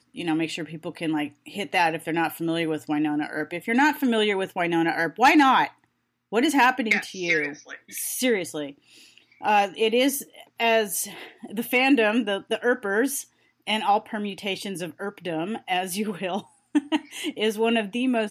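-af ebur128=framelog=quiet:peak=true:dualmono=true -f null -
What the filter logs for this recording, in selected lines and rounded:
Integrated loudness:
  I:         -21.1 LUFS
  Threshold: -31.5 LUFS
Loudness range:
  LRA:         6.1 LU
  Threshold: -41.3 LUFS
  LRA low:   -24.8 LUFS
  LRA high:  -18.7 LUFS
True peak:
  Peak:       -7.0 dBFS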